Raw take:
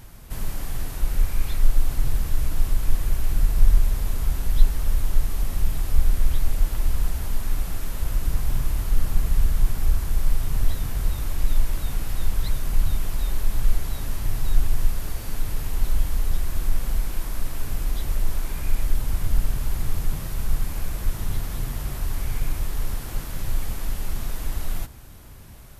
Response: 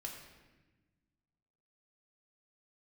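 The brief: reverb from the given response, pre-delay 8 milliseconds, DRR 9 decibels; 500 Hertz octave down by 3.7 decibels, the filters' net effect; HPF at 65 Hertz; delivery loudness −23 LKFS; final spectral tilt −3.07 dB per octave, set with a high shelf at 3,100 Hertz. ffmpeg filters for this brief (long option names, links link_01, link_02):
-filter_complex "[0:a]highpass=65,equalizer=frequency=500:width_type=o:gain=-5,highshelf=frequency=3100:gain=3.5,asplit=2[link_01][link_02];[1:a]atrim=start_sample=2205,adelay=8[link_03];[link_02][link_03]afir=irnorm=-1:irlink=0,volume=-7dB[link_04];[link_01][link_04]amix=inputs=2:normalize=0,volume=10dB"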